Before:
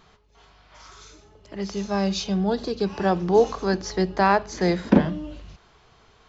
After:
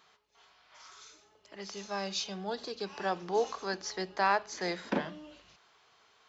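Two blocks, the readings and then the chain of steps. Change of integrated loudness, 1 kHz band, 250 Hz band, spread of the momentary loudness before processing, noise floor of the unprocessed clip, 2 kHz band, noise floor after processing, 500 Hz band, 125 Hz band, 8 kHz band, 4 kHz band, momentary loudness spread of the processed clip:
−11.0 dB, −8.0 dB, −17.5 dB, 12 LU, −57 dBFS, −6.0 dB, −66 dBFS, −12.0 dB, −19.5 dB, can't be measured, −4.5 dB, 22 LU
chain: high-pass filter 1,000 Hz 6 dB per octave
level −4.5 dB

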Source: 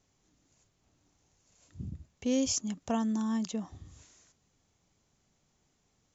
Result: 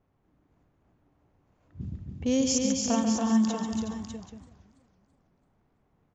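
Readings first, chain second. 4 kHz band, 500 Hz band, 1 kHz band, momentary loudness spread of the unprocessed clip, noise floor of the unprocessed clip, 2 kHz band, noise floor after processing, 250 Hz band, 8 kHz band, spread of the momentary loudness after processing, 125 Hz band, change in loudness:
+5.5 dB, +5.5 dB, +6.0 dB, 16 LU, −75 dBFS, +6.0 dB, −71 dBFS, +6.0 dB, can't be measured, 16 LU, +6.0 dB, +5.0 dB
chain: surface crackle 81 per second −61 dBFS
low-pass that shuts in the quiet parts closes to 1,300 Hz, open at −30 dBFS
on a send: multi-tap delay 140/282/368/418/599/782 ms −7.5/−4/−10/−16.5/−8/−16 dB
on the sum: feedback echo with a swinging delay time 329 ms, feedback 43%, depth 125 cents, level −23 dB
level +3 dB

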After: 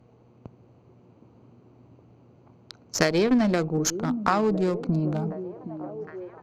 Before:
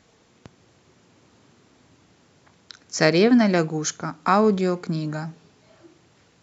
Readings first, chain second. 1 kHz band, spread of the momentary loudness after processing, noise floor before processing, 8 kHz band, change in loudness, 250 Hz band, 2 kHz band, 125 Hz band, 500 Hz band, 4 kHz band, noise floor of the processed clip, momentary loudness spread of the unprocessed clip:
−4.0 dB, 15 LU, −59 dBFS, can't be measured, −4.5 dB, −3.0 dB, −4.5 dB, −1.0 dB, −3.5 dB, −4.0 dB, −57 dBFS, 15 LU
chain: adaptive Wiener filter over 25 samples
downward compressor 4 to 1, threshold −21 dBFS, peak gain reduction 8.5 dB
hum with harmonics 120 Hz, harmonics 33, −62 dBFS −9 dB per octave
harmonic generator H 3 −15 dB, 5 −26 dB, 8 −29 dB, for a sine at −7 dBFS
on a send: echo through a band-pass that steps 766 ms, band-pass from 280 Hz, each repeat 0.7 octaves, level −8 dB
on the sum: level +5.5 dB

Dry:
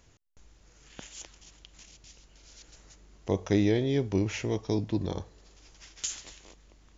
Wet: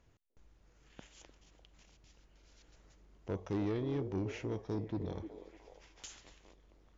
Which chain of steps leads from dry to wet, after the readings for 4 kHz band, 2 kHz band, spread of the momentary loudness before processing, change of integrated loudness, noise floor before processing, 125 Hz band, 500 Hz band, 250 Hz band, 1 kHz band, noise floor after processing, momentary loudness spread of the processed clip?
−14.0 dB, −11.5 dB, 21 LU, −9.5 dB, −60 dBFS, −9.0 dB, −9.5 dB, −9.5 dB, −6.5 dB, −68 dBFS, 22 LU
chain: low-pass filter 2,000 Hz 6 dB per octave
on a send: echo through a band-pass that steps 300 ms, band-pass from 390 Hz, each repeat 0.7 octaves, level −9 dB
on the sum: soft clipping −23 dBFS, distortion −13 dB
level −6.5 dB

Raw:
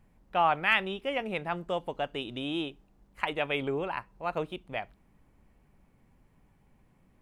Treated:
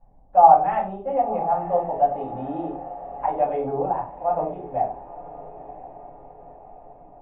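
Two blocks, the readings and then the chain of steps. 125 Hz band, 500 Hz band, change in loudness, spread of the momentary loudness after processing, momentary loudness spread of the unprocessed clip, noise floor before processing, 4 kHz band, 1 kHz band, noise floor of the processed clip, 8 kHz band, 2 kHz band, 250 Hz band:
+4.0 dB, +10.0 dB, +9.0 dB, 24 LU, 11 LU, −65 dBFS, below −25 dB, +14.0 dB, −48 dBFS, can't be measured, −13.5 dB, +3.5 dB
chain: low-pass with resonance 760 Hz, resonance Q 5.6
on a send: feedback delay with all-pass diffusion 1,002 ms, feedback 53%, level −15 dB
on the sum: rectangular room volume 210 cubic metres, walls furnished, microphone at 5.4 metres
level −10 dB

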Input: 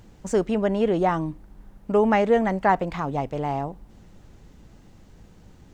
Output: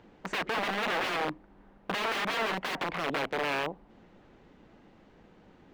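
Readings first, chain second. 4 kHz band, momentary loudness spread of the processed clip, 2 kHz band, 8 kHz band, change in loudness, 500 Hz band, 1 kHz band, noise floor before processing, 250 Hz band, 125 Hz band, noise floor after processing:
+8.5 dB, 7 LU, +1.5 dB, can't be measured, −7.5 dB, −12.5 dB, −7.5 dB, −51 dBFS, −14.5 dB, −14.5 dB, −59 dBFS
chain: wrap-around overflow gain 23 dB
three-way crossover with the lows and the highs turned down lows −16 dB, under 210 Hz, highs −21 dB, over 3,600 Hz

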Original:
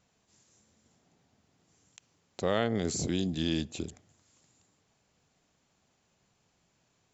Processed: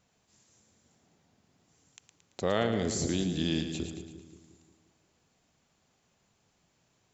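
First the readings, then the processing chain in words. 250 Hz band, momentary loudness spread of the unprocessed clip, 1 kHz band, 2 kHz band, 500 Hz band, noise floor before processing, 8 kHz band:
+0.5 dB, 12 LU, +1.0 dB, +0.5 dB, +1.0 dB, −74 dBFS, can't be measured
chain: echo with a time of its own for lows and highs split 460 Hz, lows 177 ms, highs 112 ms, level −8 dB

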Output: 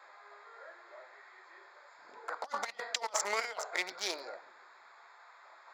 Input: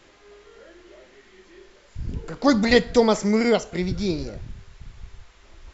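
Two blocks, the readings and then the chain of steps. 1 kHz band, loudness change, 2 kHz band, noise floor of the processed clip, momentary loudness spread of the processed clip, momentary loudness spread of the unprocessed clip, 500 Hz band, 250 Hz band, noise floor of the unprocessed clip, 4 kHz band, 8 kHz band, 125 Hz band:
−9.0 dB, −15.0 dB, −9.0 dB, −58 dBFS, 22 LU, 18 LU, −20.5 dB, −34.5 dB, −54 dBFS, −9.0 dB, can't be measured, below −40 dB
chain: adaptive Wiener filter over 15 samples
high-pass filter 770 Hz 24 dB per octave
compressor whose output falls as the input rises −36 dBFS, ratio −0.5
feedback echo with a low-pass in the loop 139 ms, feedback 65%, low-pass 1,000 Hz, level −22 dB

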